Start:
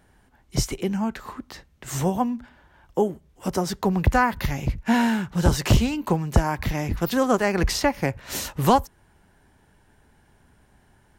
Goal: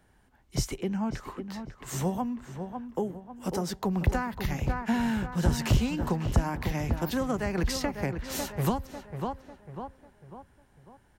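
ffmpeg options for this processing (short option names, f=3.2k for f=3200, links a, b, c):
-filter_complex "[0:a]asettb=1/sr,asplit=3[a][b][c];[a]atrim=end=0.784[d];[b]atrim=start=0.78:end=1.25,asetpts=PTS-STARTPTS,afade=t=in:d=0.004:c=qsin,afade=t=out:st=0.466:d=0.004:c=qsin,aemphasis=mode=reproduction:type=cd[e];[c]atrim=start=1.246[f];[d][e]acrossfade=d=0.004:c1=hsin:c2=qsin[g];[g][f]acrossfade=d=0.004:c1=qsin:c2=hsin,asplit=2[h][i];[i]adelay=547,lowpass=f=2.1k:p=1,volume=-9dB,asplit=2[j][k];[k]adelay=547,lowpass=f=2.1k:p=1,volume=0.45,asplit=2[l][m];[m]adelay=547,lowpass=f=2.1k:p=1,volume=0.45,asplit=2[n][o];[o]adelay=547,lowpass=f=2.1k:p=1,volume=0.45,asplit=2[p][q];[q]adelay=547,lowpass=f=2.1k:p=1,volume=0.45[r];[h][j][l][n][p][r]amix=inputs=6:normalize=0,acrossover=split=240[s][t];[t]acompressor=threshold=-23dB:ratio=10[u];[s][u]amix=inputs=2:normalize=0,volume=-5dB"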